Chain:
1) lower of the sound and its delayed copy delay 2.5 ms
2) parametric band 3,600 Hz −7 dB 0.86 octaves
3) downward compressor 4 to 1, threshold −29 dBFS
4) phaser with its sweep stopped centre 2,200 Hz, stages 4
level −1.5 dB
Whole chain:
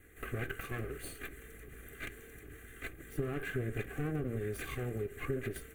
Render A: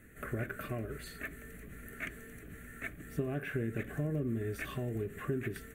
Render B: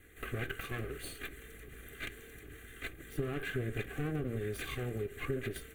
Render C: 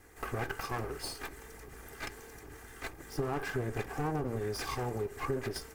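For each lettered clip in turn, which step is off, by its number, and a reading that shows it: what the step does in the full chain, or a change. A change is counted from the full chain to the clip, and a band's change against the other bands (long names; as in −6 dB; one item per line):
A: 1, 8 kHz band −3.5 dB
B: 2, 4 kHz band +5.0 dB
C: 4, 1 kHz band +9.0 dB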